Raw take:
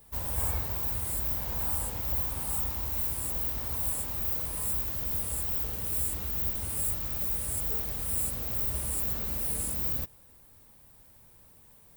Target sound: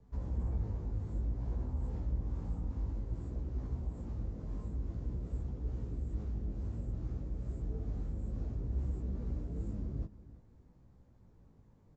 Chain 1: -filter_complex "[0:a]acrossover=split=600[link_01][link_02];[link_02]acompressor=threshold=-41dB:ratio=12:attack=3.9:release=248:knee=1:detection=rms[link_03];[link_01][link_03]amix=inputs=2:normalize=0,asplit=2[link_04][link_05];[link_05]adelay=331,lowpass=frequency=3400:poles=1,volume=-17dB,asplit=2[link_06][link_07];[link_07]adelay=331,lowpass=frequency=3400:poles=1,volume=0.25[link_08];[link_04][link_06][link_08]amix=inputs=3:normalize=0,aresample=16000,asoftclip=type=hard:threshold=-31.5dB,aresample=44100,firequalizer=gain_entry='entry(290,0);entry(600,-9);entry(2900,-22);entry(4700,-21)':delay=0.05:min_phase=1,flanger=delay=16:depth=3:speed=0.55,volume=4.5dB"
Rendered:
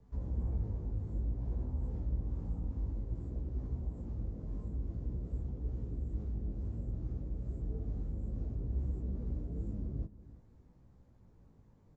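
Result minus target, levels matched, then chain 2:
downward compressor: peak gain reduction +7.5 dB
-filter_complex "[0:a]acrossover=split=600[link_01][link_02];[link_02]acompressor=threshold=-33dB:ratio=12:attack=3.9:release=248:knee=1:detection=rms[link_03];[link_01][link_03]amix=inputs=2:normalize=0,asplit=2[link_04][link_05];[link_05]adelay=331,lowpass=frequency=3400:poles=1,volume=-17dB,asplit=2[link_06][link_07];[link_07]adelay=331,lowpass=frequency=3400:poles=1,volume=0.25[link_08];[link_04][link_06][link_08]amix=inputs=3:normalize=0,aresample=16000,asoftclip=type=hard:threshold=-31.5dB,aresample=44100,firequalizer=gain_entry='entry(290,0);entry(600,-9);entry(2900,-22);entry(4700,-21)':delay=0.05:min_phase=1,flanger=delay=16:depth=3:speed=0.55,volume=4.5dB"

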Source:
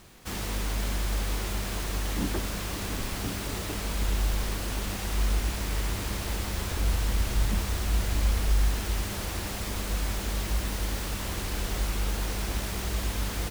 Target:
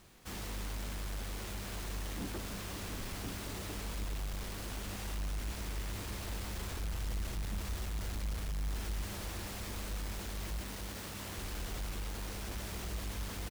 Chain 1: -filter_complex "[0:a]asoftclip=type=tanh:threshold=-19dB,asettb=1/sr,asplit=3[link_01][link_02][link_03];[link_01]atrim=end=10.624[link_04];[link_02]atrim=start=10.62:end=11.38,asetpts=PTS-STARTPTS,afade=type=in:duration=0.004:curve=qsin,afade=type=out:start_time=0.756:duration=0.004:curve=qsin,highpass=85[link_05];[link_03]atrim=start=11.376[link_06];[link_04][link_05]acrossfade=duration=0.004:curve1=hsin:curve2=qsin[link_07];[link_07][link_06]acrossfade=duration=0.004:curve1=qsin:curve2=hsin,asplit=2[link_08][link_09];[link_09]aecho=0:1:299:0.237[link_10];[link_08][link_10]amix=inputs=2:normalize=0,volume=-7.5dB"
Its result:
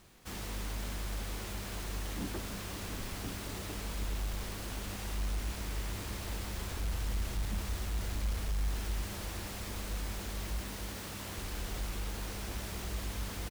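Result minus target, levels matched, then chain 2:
soft clipping: distortion −8 dB
-filter_complex "[0:a]asoftclip=type=tanh:threshold=-25.5dB,asettb=1/sr,asplit=3[link_01][link_02][link_03];[link_01]atrim=end=10.624[link_04];[link_02]atrim=start=10.62:end=11.38,asetpts=PTS-STARTPTS,afade=type=in:duration=0.004:curve=qsin,afade=type=out:start_time=0.756:duration=0.004:curve=qsin,highpass=85[link_05];[link_03]atrim=start=11.376[link_06];[link_04][link_05]acrossfade=duration=0.004:curve1=hsin:curve2=qsin[link_07];[link_07][link_06]acrossfade=duration=0.004:curve1=qsin:curve2=hsin,asplit=2[link_08][link_09];[link_09]aecho=0:1:299:0.237[link_10];[link_08][link_10]amix=inputs=2:normalize=0,volume=-7.5dB"

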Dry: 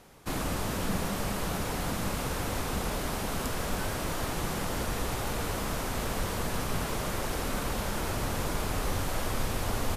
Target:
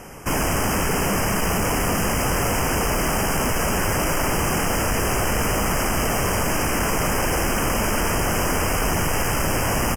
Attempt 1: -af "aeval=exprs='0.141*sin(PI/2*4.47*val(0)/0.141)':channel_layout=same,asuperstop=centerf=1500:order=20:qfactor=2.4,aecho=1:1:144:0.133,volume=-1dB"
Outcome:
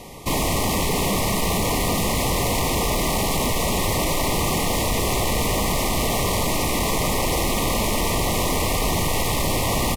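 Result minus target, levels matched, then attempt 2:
4,000 Hz band +4.0 dB
-af "aeval=exprs='0.141*sin(PI/2*4.47*val(0)/0.141)':channel_layout=same,asuperstop=centerf=3900:order=20:qfactor=2.4,aecho=1:1:144:0.133,volume=-1dB"

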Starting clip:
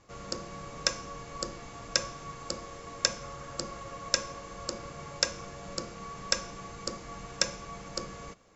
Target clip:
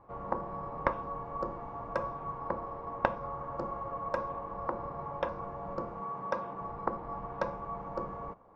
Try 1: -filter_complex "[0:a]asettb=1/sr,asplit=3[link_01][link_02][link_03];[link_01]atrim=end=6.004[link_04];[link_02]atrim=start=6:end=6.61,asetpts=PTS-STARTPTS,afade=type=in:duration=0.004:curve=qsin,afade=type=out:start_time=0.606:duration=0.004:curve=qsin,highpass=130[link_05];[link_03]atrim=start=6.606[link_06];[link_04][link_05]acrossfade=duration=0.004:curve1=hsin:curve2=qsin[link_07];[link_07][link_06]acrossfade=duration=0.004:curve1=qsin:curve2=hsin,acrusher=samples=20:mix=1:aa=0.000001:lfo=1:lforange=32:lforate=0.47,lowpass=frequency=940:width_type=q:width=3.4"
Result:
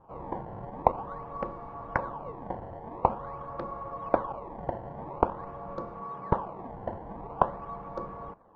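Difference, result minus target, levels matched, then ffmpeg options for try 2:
sample-and-hold swept by an LFO: distortion +9 dB
-filter_complex "[0:a]asettb=1/sr,asplit=3[link_01][link_02][link_03];[link_01]atrim=end=6.004[link_04];[link_02]atrim=start=6:end=6.61,asetpts=PTS-STARTPTS,afade=type=in:duration=0.004:curve=qsin,afade=type=out:start_time=0.606:duration=0.004:curve=qsin,highpass=130[link_05];[link_03]atrim=start=6.606[link_06];[link_04][link_05]acrossfade=duration=0.004:curve1=hsin:curve2=qsin[link_07];[link_07][link_06]acrossfade=duration=0.004:curve1=qsin:curve2=hsin,acrusher=samples=4:mix=1:aa=0.000001:lfo=1:lforange=6.4:lforate=0.47,lowpass=frequency=940:width_type=q:width=3.4"

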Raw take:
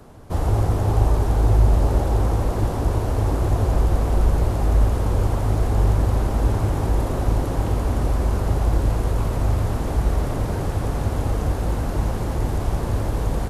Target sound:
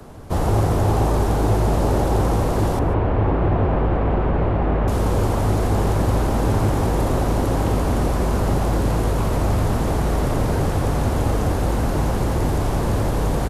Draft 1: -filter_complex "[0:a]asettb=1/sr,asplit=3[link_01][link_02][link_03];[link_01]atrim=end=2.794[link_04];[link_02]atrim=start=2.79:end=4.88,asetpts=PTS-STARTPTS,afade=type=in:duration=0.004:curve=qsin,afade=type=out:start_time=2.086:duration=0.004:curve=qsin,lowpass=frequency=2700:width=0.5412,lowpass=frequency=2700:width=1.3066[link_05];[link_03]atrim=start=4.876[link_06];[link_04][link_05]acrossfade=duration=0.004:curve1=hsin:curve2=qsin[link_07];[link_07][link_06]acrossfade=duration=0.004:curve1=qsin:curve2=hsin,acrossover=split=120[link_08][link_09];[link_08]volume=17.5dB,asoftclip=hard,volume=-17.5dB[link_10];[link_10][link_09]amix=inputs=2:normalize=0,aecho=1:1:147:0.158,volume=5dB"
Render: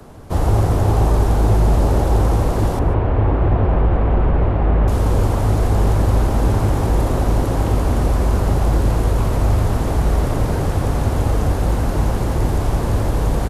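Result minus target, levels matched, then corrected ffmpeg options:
gain into a clipping stage and back: distortion −6 dB
-filter_complex "[0:a]asettb=1/sr,asplit=3[link_01][link_02][link_03];[link_01]atrim=end=2.794[link_04];[link_02]atrim=start=2.79:end=4.88,asetpts=PTS-STARTPTS,afade=type=in:duration=0.004:curve=qsin,afade=type=out:start_time=2.086:duration=0.004:curve=qsin,lowpass=frequency=2700:width=0.5412,lowpass=frequency=2700:width=1.3066[link_05];[link_03]atrim=start=4.876[link_06];[link_04][link_05]acrossfade=duration=0.004:curve1=hsin:curve2=qsin[link_07];[link_07][link_06]acrossfade=duration=0.004:curve1=qsin:curve2=hsin,acrossover=split=120[link_08][link_09];[link_08]volume=25.5dB,asoftclip=hard,volume=-25.5dB[link_10];[link_10][link_09]amix=inputs=2:normalize=0,aecho=1:1:147:0.158,volume=5dB"

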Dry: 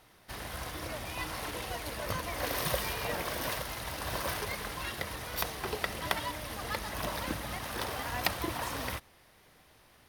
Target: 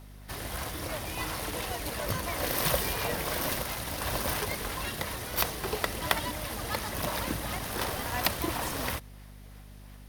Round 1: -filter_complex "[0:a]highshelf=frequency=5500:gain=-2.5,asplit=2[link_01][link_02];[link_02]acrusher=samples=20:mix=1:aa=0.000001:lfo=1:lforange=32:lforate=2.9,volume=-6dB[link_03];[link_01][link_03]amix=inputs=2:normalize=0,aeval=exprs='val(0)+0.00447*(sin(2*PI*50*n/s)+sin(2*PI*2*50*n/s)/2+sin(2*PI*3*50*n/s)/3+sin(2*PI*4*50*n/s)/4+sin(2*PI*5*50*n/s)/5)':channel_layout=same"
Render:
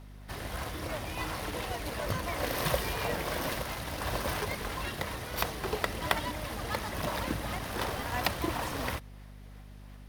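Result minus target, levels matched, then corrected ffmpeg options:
8,000 Hz band −4.0 dB
-filter_complex "[0:a]highshelf=frequency=5500:gain=7,asplit=2[link_01][link_02];[link_02]acrusher=samples=20:mix=1:aa=0.000001:lfo=1:lforange=32:lforate=2.9,volume=-6dB[link_03];[link_01][link_03]amix=inputs=2:normalize=0,aeval=exprs='val(0)+0.00447*(sin(2*PI*50*n/s)+sin(2*PI*2*50*n/s)/2+sin(2*PI*3*50*n/s)/3+sin(2*PI*4*50*n/s)/4+sin(2*PI*5*50*n/s)/5)':channel_layout=same"

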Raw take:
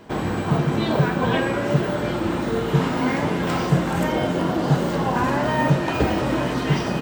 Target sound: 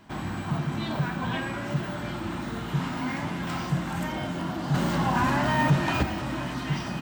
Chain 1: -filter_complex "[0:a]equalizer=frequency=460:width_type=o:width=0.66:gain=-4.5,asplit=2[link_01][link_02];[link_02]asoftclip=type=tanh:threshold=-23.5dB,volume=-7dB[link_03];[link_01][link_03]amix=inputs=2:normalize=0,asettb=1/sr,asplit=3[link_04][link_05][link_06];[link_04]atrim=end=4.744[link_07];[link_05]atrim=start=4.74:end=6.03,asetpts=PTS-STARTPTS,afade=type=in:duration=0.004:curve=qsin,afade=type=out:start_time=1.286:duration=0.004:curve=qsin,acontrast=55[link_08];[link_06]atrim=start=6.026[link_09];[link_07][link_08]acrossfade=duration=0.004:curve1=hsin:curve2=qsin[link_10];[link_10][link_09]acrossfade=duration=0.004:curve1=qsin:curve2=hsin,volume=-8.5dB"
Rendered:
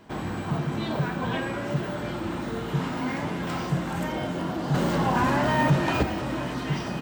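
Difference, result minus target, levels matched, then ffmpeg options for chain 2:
500 Hz band +3.5 dB
-filter_complex "[0:a]equalizer=frequency=460:width_type=o:width=0.66:gain=-14,asplit=2[link_01][link_02];[link_02]asoftclip=type=tanh:threshold=-23.5dB,volume=-7dB[link_03];[link_01][link_03]amix=inputs=2:normalize=0,asettb=1/sr,asplit=3[link_04][link_05][link_06];[link_04]atrim=end=4.744[link_07];[link_05]atrim=start=4.74:end=6.03,asetpts=PTS-STARTPTS,afade=type=in:duration=0.004:curve=qsin,afade=type=out:start_time=1.286:duration=0.004:curve=qsin,acontrast=55[link_08];[link_06]atrim=start=6.026[link_09];[link_07][link_08]acrossfade=duration=0.004:curve1=hsin:curve2=qsin[link_10];[link_10][link_09]acrossfade=duration=0.004:curve1=qsin:curve2=hsin,volume=-8.5dB"

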